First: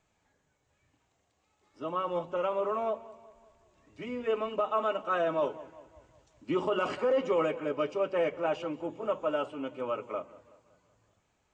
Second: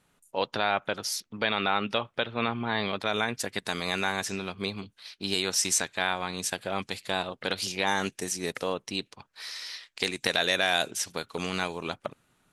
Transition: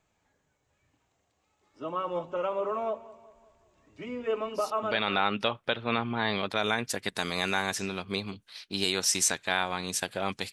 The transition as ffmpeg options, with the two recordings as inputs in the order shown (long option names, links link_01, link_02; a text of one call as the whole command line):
ffmpeg -i cue0.wav -i cue1.wav -filter_complex "[0:a]apad=whole_dur=10.52,atrim=end=10.52,atrim=end=5.25,asetpts=PTS-STARTPTS[link_01];[1:a]atrim=start=1.03:end=7.02,asetpts=PTS-STARTPTS[link_02];[link_01][link_02]acrossfade=duration=0.72:curve1=qsin:curve2=qsin" out.wav